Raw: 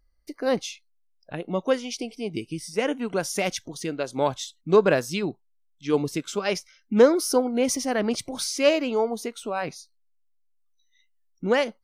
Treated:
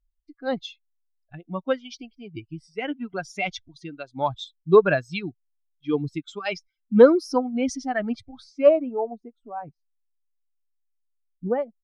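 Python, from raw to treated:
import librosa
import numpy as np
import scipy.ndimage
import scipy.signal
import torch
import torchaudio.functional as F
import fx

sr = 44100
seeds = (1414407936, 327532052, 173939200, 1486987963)

y = fx.bin_expand(x, sr, power=2.0)
y = fx.filter_sweep_lowpass(y, sr, from_hz=3100.0, to_hz=600.0, start_s=7.85, end_s=9.04, q=1.1)
y = y * 10.0 ** (5.0 / 20.0)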